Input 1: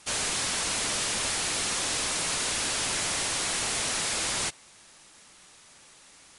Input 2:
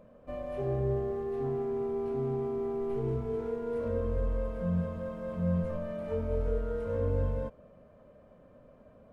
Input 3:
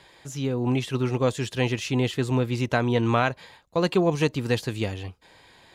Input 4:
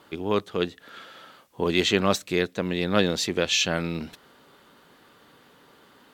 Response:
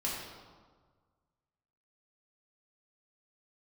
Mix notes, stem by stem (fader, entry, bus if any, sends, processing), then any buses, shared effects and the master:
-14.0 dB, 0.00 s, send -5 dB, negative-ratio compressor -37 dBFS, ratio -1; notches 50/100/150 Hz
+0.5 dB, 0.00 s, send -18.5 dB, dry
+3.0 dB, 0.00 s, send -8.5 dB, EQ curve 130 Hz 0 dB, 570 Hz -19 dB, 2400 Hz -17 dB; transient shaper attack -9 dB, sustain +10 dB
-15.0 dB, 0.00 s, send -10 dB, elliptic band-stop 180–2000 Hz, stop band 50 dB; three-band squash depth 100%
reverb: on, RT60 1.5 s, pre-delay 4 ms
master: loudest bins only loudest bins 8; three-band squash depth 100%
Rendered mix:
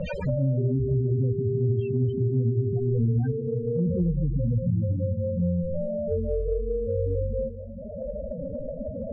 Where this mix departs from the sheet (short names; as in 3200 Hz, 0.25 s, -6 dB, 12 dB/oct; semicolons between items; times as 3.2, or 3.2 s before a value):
stem 1 -14.0 dB -> -7.5 dB; stem 4 -15.0 dB -> -26.0 dB